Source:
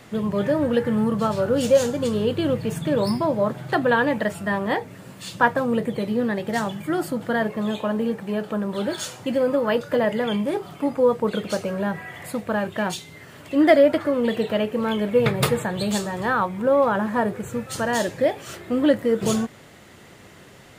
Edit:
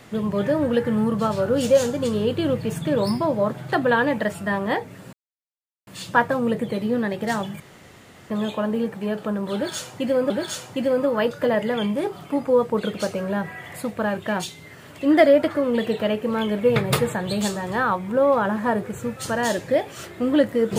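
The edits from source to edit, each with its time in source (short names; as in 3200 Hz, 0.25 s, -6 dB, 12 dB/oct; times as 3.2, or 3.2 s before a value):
5.13 insert silence 0.74 s
6.86–7.56 room tone
8.8–9.56 loop, 2 plays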